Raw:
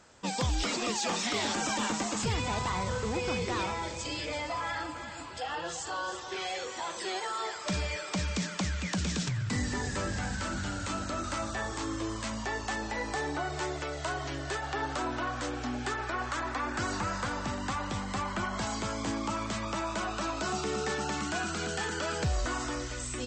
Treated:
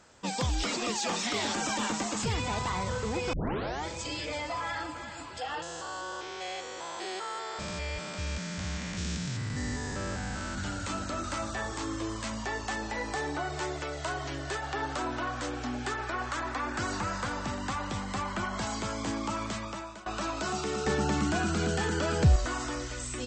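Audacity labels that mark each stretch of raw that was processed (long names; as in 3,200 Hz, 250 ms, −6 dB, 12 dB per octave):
3.330000	3.330000	tape start 0.53 s
5.620000	10.580000	spectrum averaged block by block every 200 ms
19.470000	20.060000	fade out, to −19 dB
20.860000	22.360000	low-shelf EQ 460 Hz +10 dB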